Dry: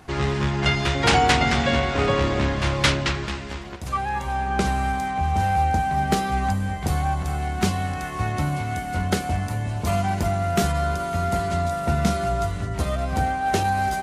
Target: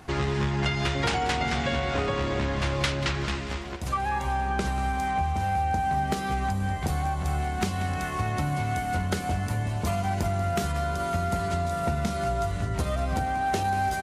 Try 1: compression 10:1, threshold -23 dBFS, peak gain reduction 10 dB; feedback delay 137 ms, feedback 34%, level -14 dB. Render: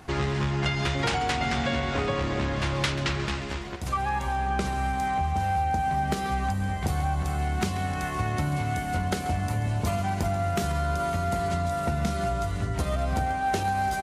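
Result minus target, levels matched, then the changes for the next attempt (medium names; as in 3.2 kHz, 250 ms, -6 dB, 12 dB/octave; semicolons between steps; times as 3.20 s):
echo 50 ms early
change: feedback delay 187 ms, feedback 34%, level -14 dB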